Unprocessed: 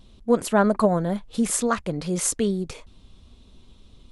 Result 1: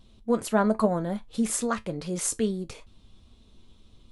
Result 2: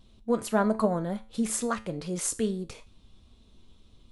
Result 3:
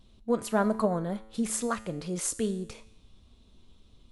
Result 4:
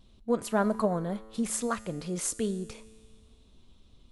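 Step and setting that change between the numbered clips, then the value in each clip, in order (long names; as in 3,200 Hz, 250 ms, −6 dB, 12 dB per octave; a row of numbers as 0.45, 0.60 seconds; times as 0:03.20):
tuned comb filter, decay: 0.16, 0.38, 0.88, 1.9 seconds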